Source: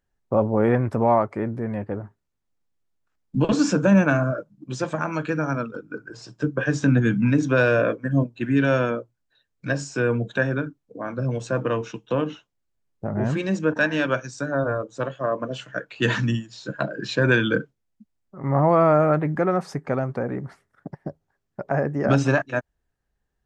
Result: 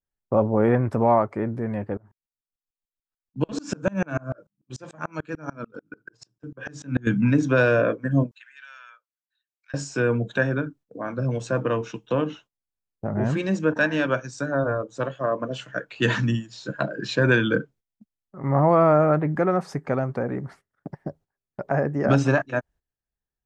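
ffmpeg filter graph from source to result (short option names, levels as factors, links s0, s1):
-filter_complex "[0:a]asettb=1/sr,asplit=3[s0][s1][s2];[s0]atrim=end=1.974[s3];[s1]atrim=start=1.97:end=7.07,asetpts=PTS-STARTPTS,afade=t=in:d=0.004:c=qsin,afade=t=out:st=5.096:d=0.004:c=qsin,highshelf=f=6300:g=3.5,aeval=exprs='val(0)*pow(10,-32*if(lt(mod(-6.8*n/s,1),2*abs(-6.8)/1000),1-mod(-6.8*n/s,1)/(2*abs(-6.8)/1000),(mod(-6.8*n/s,1)-2*abs(-6.8)/1000)/(1-2*abs(-6.8)/1000))/20)':c=same[s4];[s2]atrim=start=7.066[s5];[s3][s4]acrossfade=d=0.004:c1=hsin:c2=qsin[s6];[s6][s5]acrossfade=d=0.004:c1=qsin:c2=hsin,asettb=1/sr,asplit=3[s7][s8][s9];[s7]atrim=end=8.314[s10];[s8]atrim=start=8.31:end=9.74,asetpts=PTS-STARTPTS,afade=t=in:d=0.004:c=qsin,afade=t=out:st=1.426:d=0.004:c=qsin,highpass=f=1300:w=0.5412,highpass=f=1300:w=1.3066,acompressor=threshold=0.00316:ratio=2.5:attack=3.2:release=140:knee=1:detection=peak[s11];[s9]atrim=start=9.736[s12];[s10][s11]acrossfade=d=0.004:c1=hsin:c2=qsin[s13];[s13][s12]acrossfade=d=0.004:c1=qsin:c2=hsin,agate=range=0.2:threshold=0.00398:ratio=16:detection=peak,adynamicequalizer=threshold=0.0224:dfrequency=1800:dqfactor=0.7:tfrequency=1800:tqfactor=0.7:attack=5:release=100:ratio=0.375:range=2.5:mode=cutabove:tftype=highshelf"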